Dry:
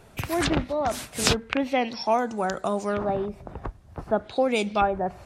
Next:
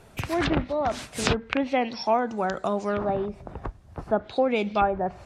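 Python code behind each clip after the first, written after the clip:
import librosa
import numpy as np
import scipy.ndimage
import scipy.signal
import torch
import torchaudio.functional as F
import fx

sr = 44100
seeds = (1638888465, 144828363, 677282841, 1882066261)

y = fx.env_lowpass_down(x, sr, base_hz=2600.0, full_db=-18.5)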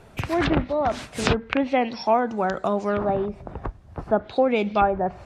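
y = fx.high_shelf(x, sr, hz=4800.0, db=-7.5)
y = y * 10.0 ** (3.0 / 20.0)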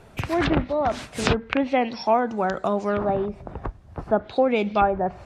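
y = x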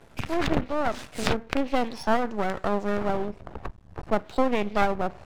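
y = np.maximum(x, 0.0)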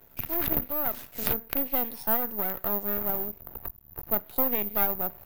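y = (np.kron(x[::3], np.eye(3)[0]) * 3)[:len(x)]
y = y * 10.0 ** (-8.0 / 20.0)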